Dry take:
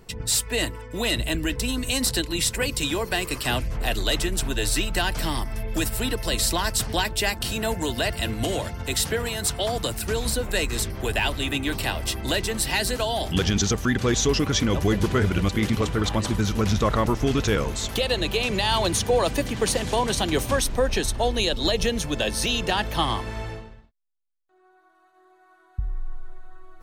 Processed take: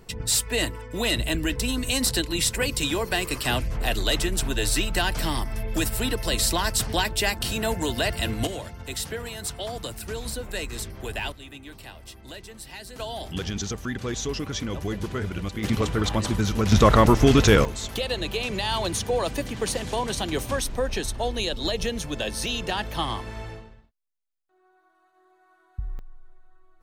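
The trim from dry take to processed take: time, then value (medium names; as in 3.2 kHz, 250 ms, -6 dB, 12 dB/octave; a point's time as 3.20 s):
0 dB
from 8.47 s -7 dB
from 11.32 s -16.5 dB
from 12.96 s -8 dB
from 15.64 s -0.5 dB
from 16.72 s +6 dB
from 17.65 s -4 dB
from 25.99 s -13 dB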